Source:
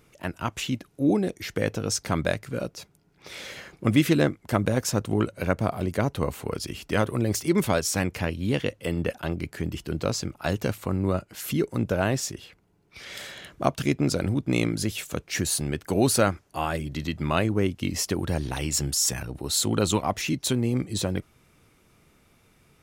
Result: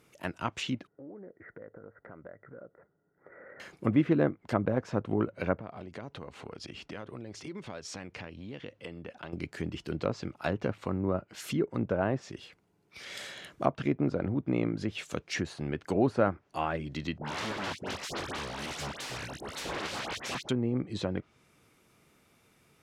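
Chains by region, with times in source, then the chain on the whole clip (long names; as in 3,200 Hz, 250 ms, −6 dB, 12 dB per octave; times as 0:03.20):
0:00.87–0:03.60: Chebyshev low-pass with heavy ripple 2,000 Hz, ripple 9 dB + downward compressor 5 to 1, threshold −41 dBFS + highs frequency-modulated by the lows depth 0.16 ms
0:05.56–0:09.33: low-pass filter 4,200 Hz + downward compressor, threshold −34 dBFS
0:17.18–0:20.49: notch filter 1,200 Hz, Q 5.3 + wrap-around overflow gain 25.5 dB + all-pass dispersion highs, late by 78 ms, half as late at 1,600 Hz
whole clip: treble cut that deepens with the level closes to 1,400 Hz, closed at −21 dBFS; high-pass filter 150 Hz 6 dB per octave; level −3 dB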